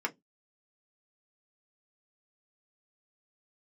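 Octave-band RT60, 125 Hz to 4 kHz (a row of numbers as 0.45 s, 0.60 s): 0.25 s, 0.25 s, 0.20 s, 0.10 s, 0.10 s, 0.15 s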